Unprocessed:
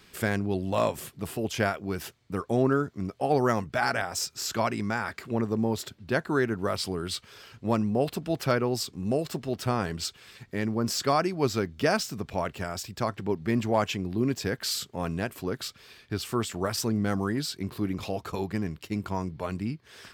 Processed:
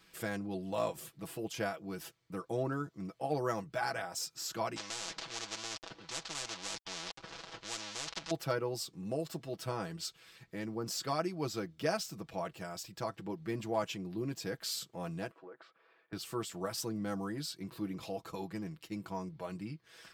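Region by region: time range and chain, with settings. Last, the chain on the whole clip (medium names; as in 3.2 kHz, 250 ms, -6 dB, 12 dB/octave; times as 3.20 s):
4.76–8.31 s: dead-time distortion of 0.26 ms + low-pass 5.9 kHz 24 dB/octave + spectrum-flattening compressor 10:1
15.31–16.13 s: Butterworth band-pass 770 Hz, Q 0.64 + compression 5:1, threshold -38 dBFS
whole clip: bass shelf 260 Hz -4.5 dB; comb 6.1 ms, depth 70%; dynamic bell 1.9 kHz, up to -4 dB, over -44 dBFS, Q 1.1; trim -9 dB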